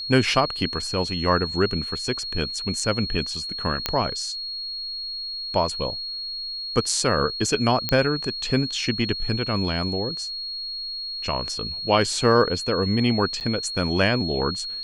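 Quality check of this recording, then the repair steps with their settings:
whine 4.3 kHz -29 dBFS
3.86 s: pop -6 dBFS
7.89 s: pop -7 dBFS
13.40–13.41 s: dropout 8.9 ms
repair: de-click; band-stop 4.3 kHz, Q 30; interpolate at 13.40 s, 8.9 ms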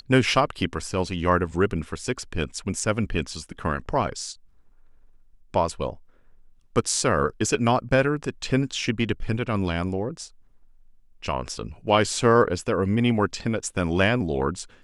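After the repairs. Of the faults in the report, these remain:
nothing left

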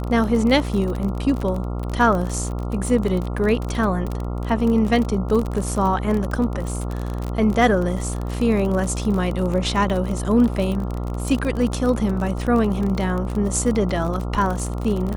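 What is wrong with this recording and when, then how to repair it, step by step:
buzz 60 Hz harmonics 23 -26 dBFS
crackle 35 per s -24 dBFS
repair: de-click; de-hum 60 Hz, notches 23

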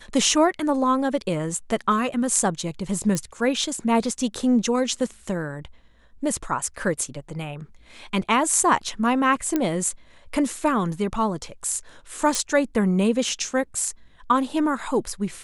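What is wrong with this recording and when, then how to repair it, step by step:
3.15 s: pop -13 dBFS
9.56 s: pop -9 dBFS
12.35 s: pop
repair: de-click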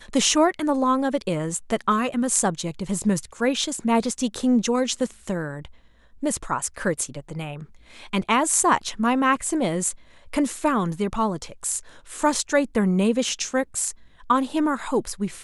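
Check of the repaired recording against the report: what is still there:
nothing left

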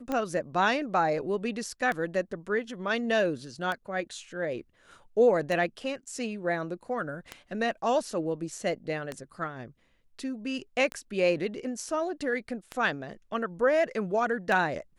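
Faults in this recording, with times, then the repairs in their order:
tick 33 1/3 rpm -18 dBFS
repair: de-click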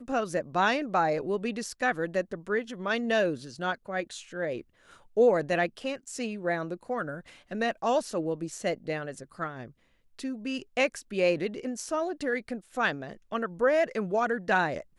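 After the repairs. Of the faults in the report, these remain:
nothing left

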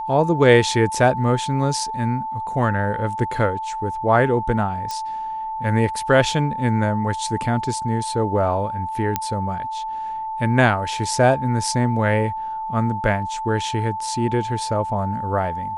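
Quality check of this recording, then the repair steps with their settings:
whine 880 Hz -25 dBFS
4.91 s: pop -14 dBFS
9.16 s: pop -5 dBFS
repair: de-click; band-stop 880 Hz, Q 30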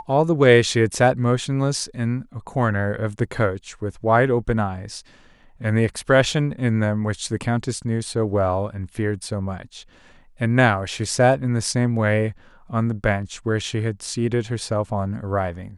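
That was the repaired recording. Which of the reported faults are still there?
nothing left

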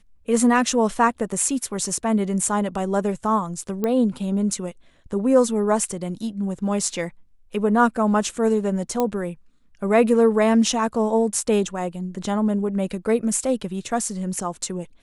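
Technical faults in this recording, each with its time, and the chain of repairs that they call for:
3.84 s: pop -12 dBFS
9.00 s: pop -9 dBFS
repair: de-click

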